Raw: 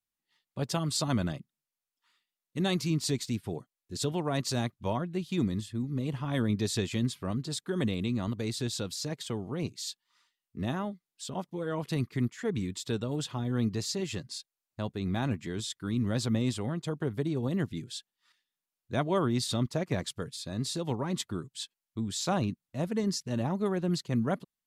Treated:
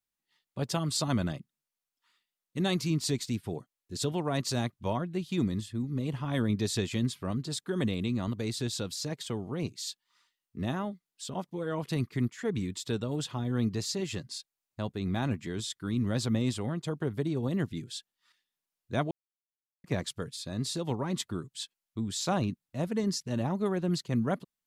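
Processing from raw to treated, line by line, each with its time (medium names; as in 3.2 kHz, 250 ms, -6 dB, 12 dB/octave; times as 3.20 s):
19.11–19.84 s: mute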